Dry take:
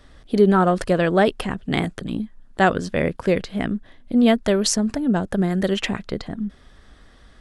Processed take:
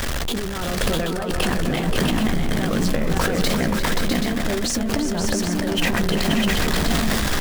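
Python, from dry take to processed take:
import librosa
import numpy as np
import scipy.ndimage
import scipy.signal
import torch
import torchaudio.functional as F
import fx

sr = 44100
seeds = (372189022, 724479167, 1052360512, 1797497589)

y = x + 0.5 * 10.0 ** (-24.0 / 20.0) * np.sign(x)
y = fx.over_compress(y, sr, threshold_db=-25.0, ratio=-1.0)
y = fx.doubler(y, sr, ms=13.0, db=-11)
y = fx.echo_multitap(y, sr, ms=(347, 529, 653, 780), db=(-9.0, -5.0, -5.0, -8.0))
y = fx.sustainer(y, sr, db_per_s=21.0)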